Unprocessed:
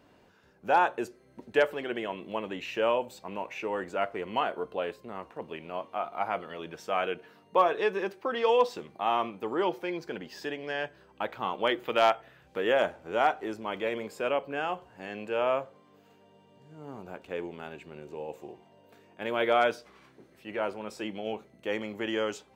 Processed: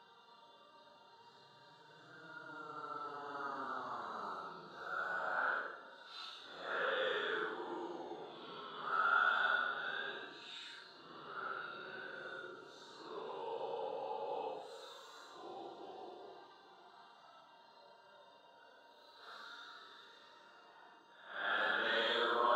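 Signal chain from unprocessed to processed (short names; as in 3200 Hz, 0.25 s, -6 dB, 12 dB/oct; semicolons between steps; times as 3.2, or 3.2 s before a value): double band-pass 2300 Hz, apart 1.5 oct; Paulstretch 7.8×, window 0.05 s, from 16.45; gain +16.5 dB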